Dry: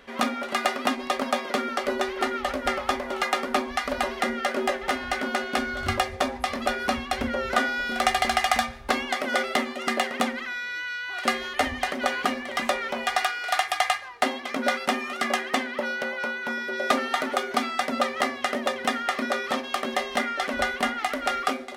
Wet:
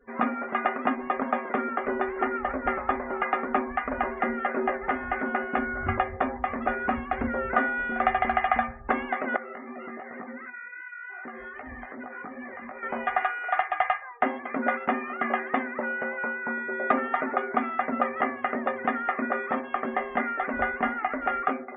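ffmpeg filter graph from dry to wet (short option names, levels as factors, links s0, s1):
-filter_complex "[0:a]asettb=1/sr,asplit=3[s0][s1][s2];[s0]atrim=end=9.364[s3];[s1]atrim=start=9.36:end=12.83,asetpts=PTS-STARTPTS,afade=t=in:d=0.004:c=qsin,afade=t=out:st=3.466:d=0.004:c=qsin,acompressor=threshold=0.0316:ratio=16:attack=3.2:release=140:knee=1:detection=peak,flanger=delay=16:depth=4.8:speed=2.6[s4];[s2]atrim=start=12.826[s5];[s3][s4]acrossfade=d=0.004:c1=hsin:c2=qsin[s6];[s6][s5]acrossfade=d=0.004:c1=qsin:c2=hsin,lowpass=f=2000:w=0.5412,lowpass=f=2000:w=1.3066,bandreject=f=570:w=12,afftdn=nr=32:nf=-47"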